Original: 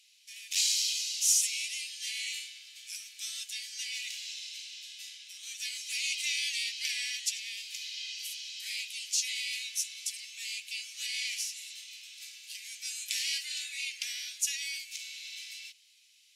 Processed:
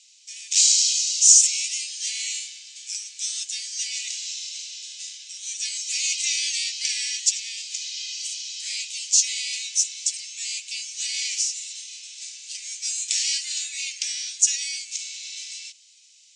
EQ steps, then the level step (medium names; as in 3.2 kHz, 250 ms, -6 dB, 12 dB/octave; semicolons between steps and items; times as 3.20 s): steep low-pass 8.8 kHz 48 dB/octave; peaking EQ 6.9 kHz +14 dB 1.3 oct; 0.0 dB